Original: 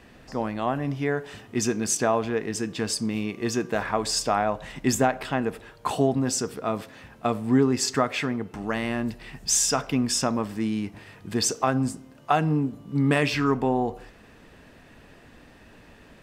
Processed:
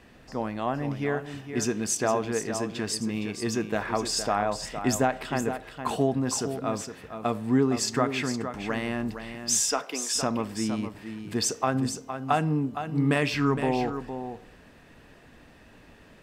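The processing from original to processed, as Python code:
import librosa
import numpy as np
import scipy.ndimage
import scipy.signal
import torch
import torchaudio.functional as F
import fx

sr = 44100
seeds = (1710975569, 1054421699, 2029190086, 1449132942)

y = fx.highpass(x, sr, hz=fx.line((9.32, 160.0), (10.14, 450.0)), slope=24, at=(9.32, 10.14), fade=0.02)
y = y + 10.0 ** (-9.0 / 20.0) * np.pad(y, (int(463 * sr / 1000.0), 0))[:len(y)]
y = y * librosa.db_to_amplitude(-2.5)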